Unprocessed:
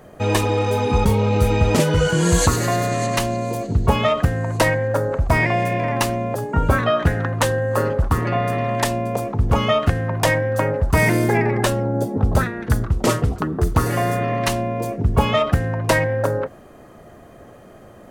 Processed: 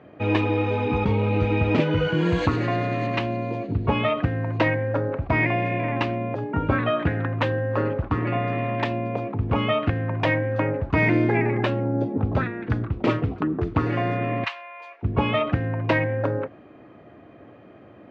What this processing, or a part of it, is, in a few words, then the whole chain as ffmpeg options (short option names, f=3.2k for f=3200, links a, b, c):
guitar cabinet: -filter_complex "[0:a]asettb=1/sr,asplit=3[a][b][c];[a]atrim=end=14.444[d];[b]atrim=start=14.44:end=15.03,asetpts=PTS-STARTPTS,afade=t=in:d=0.004:c=qsin,afade=t=out:st=0.586:d=0.004:c=qsin,highpass=f=940:w=0.5412,highpass=f=940:w=1.3066[e];[c]atrim=start=15.026[f];[d][e]acrossfade=d=0.004:c1=hsin:c2=qsin[g];[g][f]acrossfade=d=0.004:c1=qsin:c2=hsin,highpass=88,equalizer=f=110:t=q:w=4:g=4,equalizer=f=300:t=q:w=4:g=9,equalizer=f=2.4k:t=q:w=4:g=6,lowpass=f=3.5k:w=0.5412,lowpass=f=3.5k:w=1.3066,volume=-5.5dB"